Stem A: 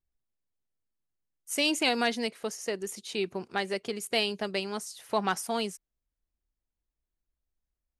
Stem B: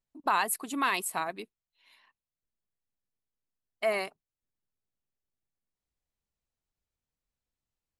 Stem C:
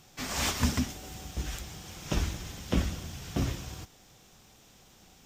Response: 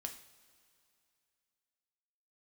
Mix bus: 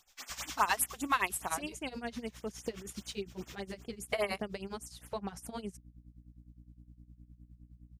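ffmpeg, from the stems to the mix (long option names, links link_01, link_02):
-filter_complex "[0:a]volume=-1dB,asplit=2[link_01][link_02];[1:a]aeval=exprs='val(0)+0.00282*(sin(2*PI*60*n/s)+sin(2*PI*2*60*n/s)/2+sin(2*PI*3*60*n/s)/3+sin(2*PI*4*60*n/s)/4+sin(2*PI*5*60*n/s)/5)':channel_layout=same,adelay=300,volume=1dB[link_03];[2:a]highpass=1100,volume=-3.5dB[link_04];[link_02]apad=whole_len=231660[link_05];[link_04][link_05]sidechaincompress=threshold=-32dB:ratio=8:attack=5.5:release=144[link_06];[link_01][link_06]amix=inputs=2:normalize=0,lowshelf=frequency=330:gain=10.5,acompressor=threshold=-33dB:ratio=6,volume=0dB[link_07];[link_03][link_07]amix=inputs=2:normalize=0,tremolo=f=9.7:d=0.84,afftfilt=real='re*(1-between(b*sr/1024,250*pow(5100/250,0.5+0.5*sin(2*PI*5*pts/sr))/1.41,250*pow(5100/250,0.5+0.5*sin(2*PI*5*pts/sr))*1.41))':imag='im*(1-between(b*sr/1024,250*pow(5100/250,0.5+0.5*sin(2*PI*5*pts/sr))/1.41,250*pow(5100/250,0.5+0.5*sin(2*PI*5*pts/sr))*1.41))':win_size=1024:overlap=0.75"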